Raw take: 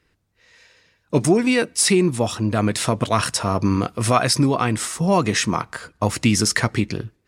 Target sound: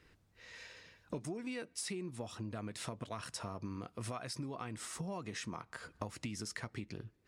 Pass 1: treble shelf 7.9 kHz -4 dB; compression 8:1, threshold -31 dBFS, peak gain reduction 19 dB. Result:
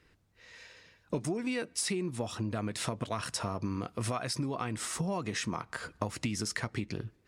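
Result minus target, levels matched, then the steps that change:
compression: peak gain reduction -8.5 dB
change: compression 8:1, threshold -40.5 dBFS, peak gain reduction 27.5 dB

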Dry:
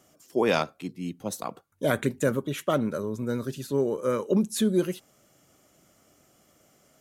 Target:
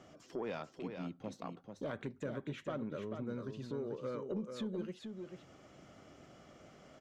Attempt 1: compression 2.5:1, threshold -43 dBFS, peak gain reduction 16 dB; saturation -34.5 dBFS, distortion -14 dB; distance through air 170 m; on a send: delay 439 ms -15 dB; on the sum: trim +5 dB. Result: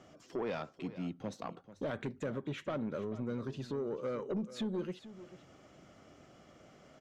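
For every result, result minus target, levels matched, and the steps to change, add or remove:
echo-to-direct -8.5 dB; compression: peak gain reduction -5 dB
change: delay 439 ms -6.5 dB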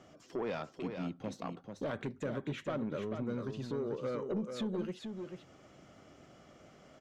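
compression: peak gain reduction -5 dB
change: compression 2.5:1, threshold -51.5 dBFS, peak gain reduction 21 dB

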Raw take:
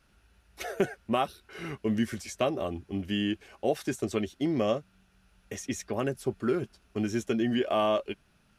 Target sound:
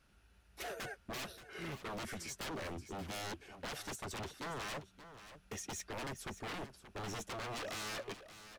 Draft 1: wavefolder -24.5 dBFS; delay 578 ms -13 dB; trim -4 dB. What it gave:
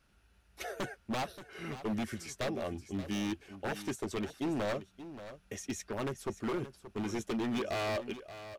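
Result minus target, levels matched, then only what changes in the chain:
wavefolder: distortion -22 dB
change: wavefolder -33.5 dBFS

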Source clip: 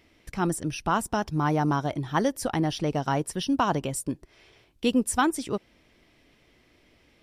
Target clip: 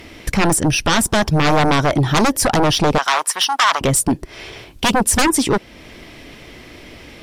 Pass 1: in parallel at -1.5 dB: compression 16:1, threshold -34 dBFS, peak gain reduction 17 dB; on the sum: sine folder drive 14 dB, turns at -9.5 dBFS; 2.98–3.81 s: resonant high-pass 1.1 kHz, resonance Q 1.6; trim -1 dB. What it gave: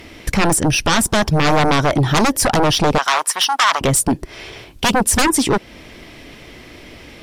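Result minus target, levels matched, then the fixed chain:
compression: peak gain reduction -6 dB
in parallel at -1.5 dB: compression 16:1, threshold -40.5 dBFS, peak gain reduction 23 dB; on the sum: sine folder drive 14 dB, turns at -9.5 dBFS; 2.98–3.81 s: resonant high-pass 1.1 kHz, resonance Q 1.6; trim -1 dB

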